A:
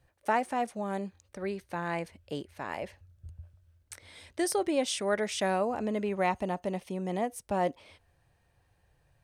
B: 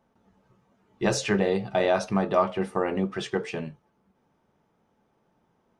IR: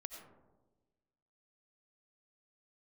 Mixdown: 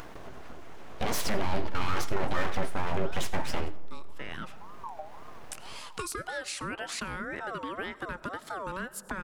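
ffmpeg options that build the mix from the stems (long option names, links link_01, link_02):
-filter_complex "[0:a]equalizer=frequency=270:width_type=o:width=0.7:gain=-11.5,acompressor=threshold=-32dB:ratio=6,aeval=exprs='val(0)*sin(2*PI*920*n/s+920*0.25/1.9*sin(2*PI*1.9*n/s))':channel_layout=same,adelay=1600,volume=-8dB,asplit=2[link_01][link_02];[link_02]volume=-9.5dB[link_03];[1:a]alimiter=limit=-22dB:level=0:latency=1:release=17,aeval=exprs='abs(val(0))':channel_layout=same,volume=2dB,asplit=3[link_04][link_05][link_06];[link_05]volume=-9dB[link_07];[link_06]volume=-20.5dB[link_08];[2:a]atrim=start_sample=2205[link_09];[link_03][link_07]amix=inputs=2:normalize=0[link_10];[link_10][link_09]afir=irnorm=-1:irlink=0[link_11];[link_08]aecho=0:1:84|168|252|336|420|504:1|0.41|0.168|0.0689|0.0283|0.0116[link_12];[link_01][link_04][link_11][link_12]amix=inputs=4:normalize=0,acompressor=mode=upward:threshold=-25dB:ratio=2.5"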